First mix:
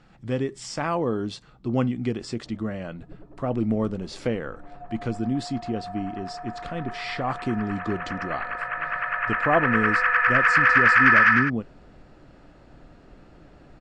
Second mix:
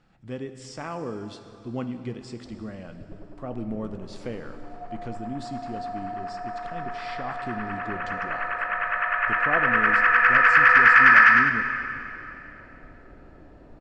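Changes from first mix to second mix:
speech -9.5 dB; reverb: on, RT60 3.0 s

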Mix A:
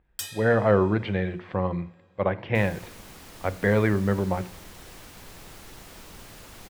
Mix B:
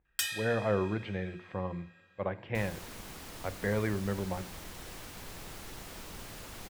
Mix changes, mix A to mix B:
speech -9.5 dB; first sound: add peaking EQ 2 kHz +9 dB 1.3 oct

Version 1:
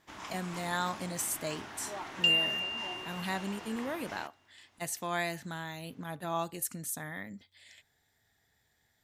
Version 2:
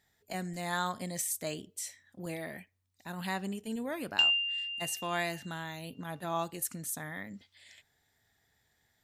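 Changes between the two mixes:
first sound: muted; second sound: entry +1.95 s

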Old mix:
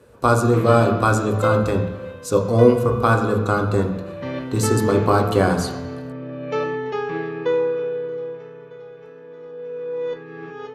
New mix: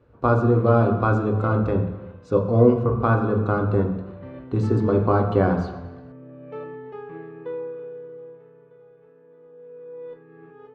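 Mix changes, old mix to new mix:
background -9.5 dB; master: add tape spacing loss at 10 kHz 40 dB

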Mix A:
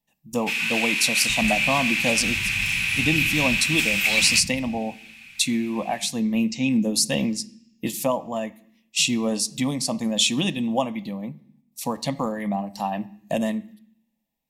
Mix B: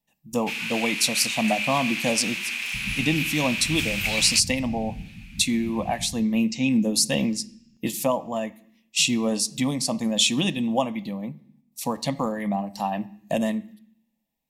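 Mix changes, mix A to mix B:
first sound: send off; second sound: entry +1.45 s

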